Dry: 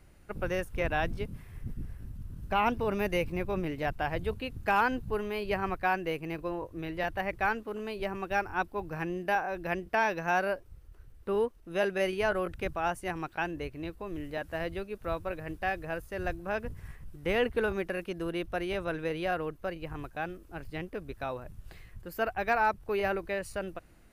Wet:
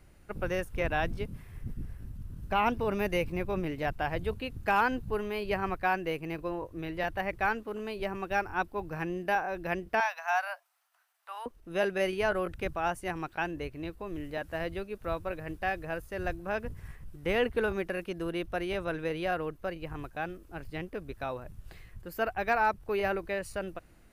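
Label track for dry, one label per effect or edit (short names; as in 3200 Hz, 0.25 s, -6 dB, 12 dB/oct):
10.000000	11.460000	Chebyshev high-pass 690 Hz, order 5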